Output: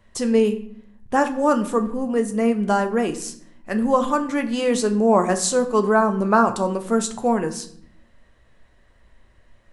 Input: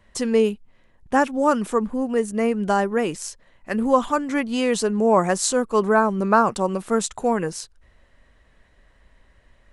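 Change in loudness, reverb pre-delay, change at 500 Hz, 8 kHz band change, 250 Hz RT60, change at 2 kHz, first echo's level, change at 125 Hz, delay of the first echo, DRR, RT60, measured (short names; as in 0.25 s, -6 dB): +0.5 dB, 9 ms, +0.5 dB, +0.5 dB, 1.1 s, -1.0 dB, none, +1.0 dB, none, 6.5 dB, 0.65 s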